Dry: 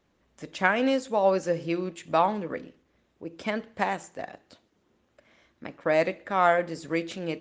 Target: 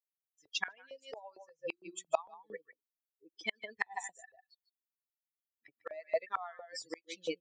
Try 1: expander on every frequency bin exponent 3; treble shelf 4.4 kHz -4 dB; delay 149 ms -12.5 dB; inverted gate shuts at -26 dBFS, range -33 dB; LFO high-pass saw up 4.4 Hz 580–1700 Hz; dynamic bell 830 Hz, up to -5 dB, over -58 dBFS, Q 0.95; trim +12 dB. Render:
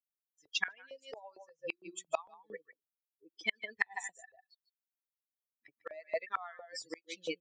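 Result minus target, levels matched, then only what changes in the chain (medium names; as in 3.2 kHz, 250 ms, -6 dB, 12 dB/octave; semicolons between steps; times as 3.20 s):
1 kHz band -3.0 dB
change: dynamic bell 1.9 kHz, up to -5 dB, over -58 dBFS, Q 0.95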